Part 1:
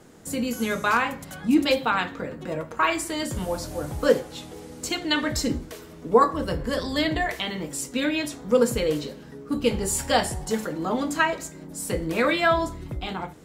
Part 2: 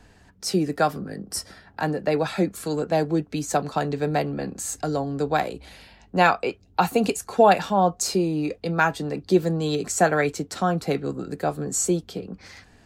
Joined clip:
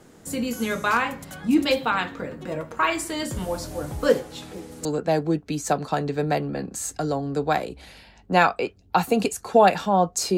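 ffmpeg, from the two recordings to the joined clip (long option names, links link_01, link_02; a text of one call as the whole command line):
ffmpeg -i cue0.wav -i cue1.wav -filter_complex "[1:a]asplit=2[link_01][link_02];[0:a]apad=whole_dur=10.37,atrim=end=10.37,atrim=end=4.852[link_03];[link_02]atrim=start=2.688:end=8.21[link_04];[link_01]atrim=start=2.26:end=2.69,asetpts=PTS-STARTPTS,volume=-17.5dB,afade=type=in:duration=0.004:curve=hsin,afade=type=out:start_time=0.426:duration=0.004:curve=hsin,adelay=4420[link_05];[link_03][link_04]acrossfade=duration=0.004:curve1=hsin:curve2=hsin[link_06];[link_06][link_05]amix=inputs=2:normalize=0" out.wav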